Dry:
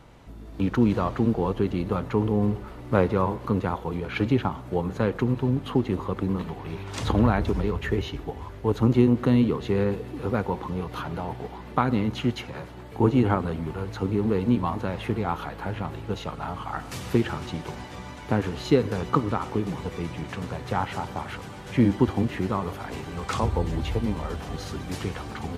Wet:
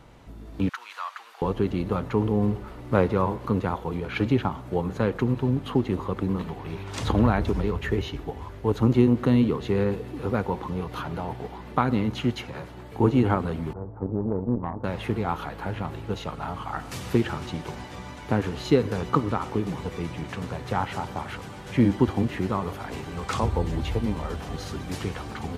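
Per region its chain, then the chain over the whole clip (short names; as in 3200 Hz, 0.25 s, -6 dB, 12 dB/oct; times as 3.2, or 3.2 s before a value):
0.69–1.42 HPF 1100 Hz 24 dB/oct + mismatched tape noise reduction encoder only
13.73–14.84 inverse Chebyshev low-pass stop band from 3400 Hz, stop band 60 dB + tube stage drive 17 dB, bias 0.75
whole clip: dry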